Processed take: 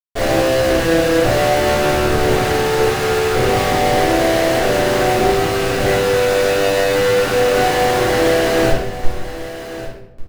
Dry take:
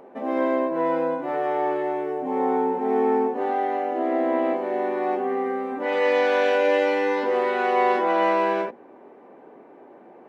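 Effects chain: LPF 2100 Hz 12 dB/oct; low shelf 170 Hz +9 dB; in parallel at -2 dB: compressor, threshold -30 dBFS, peak gain reduction 13.5 dB; on the sum: buzz 120 Hz, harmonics 3, -46 dBFS; fixed phaser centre 1000 Hz, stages 6; Schmitt trigger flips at -32.5 dBFS; on a send: echo 1.149 s -13.5 dB; on the sum: shoebox room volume 220 m³, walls mixed, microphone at 3.4 m; Doppler distortion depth 0.16 ms; gain -3 dB

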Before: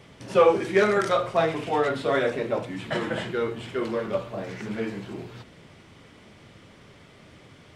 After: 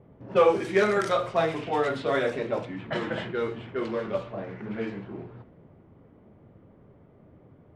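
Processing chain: low-pass opened by the level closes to 620 Hz, open at -20.5 dBFS; gain -2 dB

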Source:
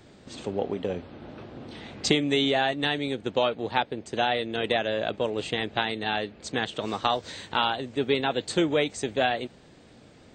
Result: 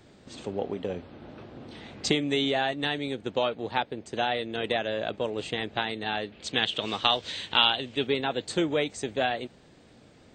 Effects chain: 6.32–8.07 bell 3100 Hz +11.5 dB 1 oct; gain -2.5 dB

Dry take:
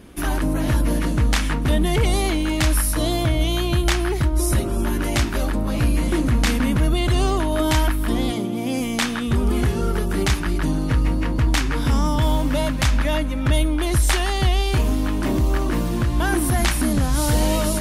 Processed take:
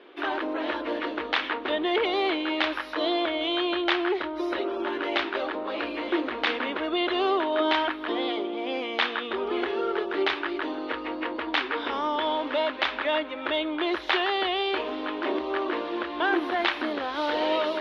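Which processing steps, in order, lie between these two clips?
elliptic band-pass 360–3600 Hz, stop band 40 dB

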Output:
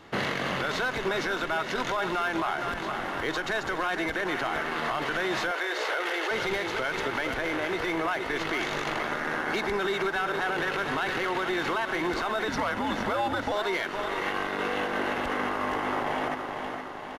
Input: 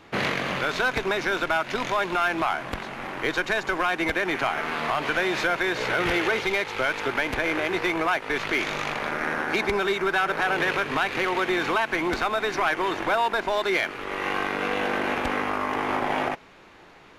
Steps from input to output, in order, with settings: on a send: feedback echo 0.464 s, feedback 57%, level -10 dB; 12.48–13.52 on the sum: frequency shift -120 Hz; notch 2400 Hz, Q 8.9; limiter -20 dBFS, peak gain reduction 8.5 dB; 5.51–6.31 HPF 390 Hz 24 dB/oct

